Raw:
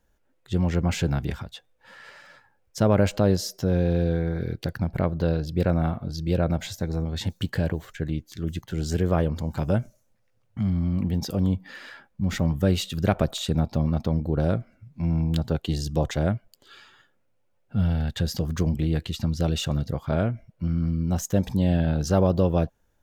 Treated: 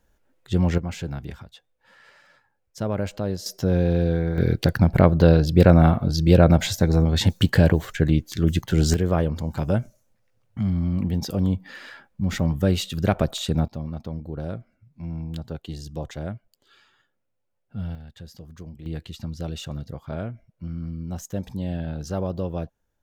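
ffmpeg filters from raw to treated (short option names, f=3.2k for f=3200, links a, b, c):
-af "asetnsamples=n=441:p=0,asendcmd='0.78 volume volume -6.5dB;3.46 volume volume 2dB;4.38 volume volume 9dB;8.94 volume volume 1dB;13.68 volume volume -8dB;17.95 volume volume -16dB;18.86 volume volume -7dB',volume=3dB"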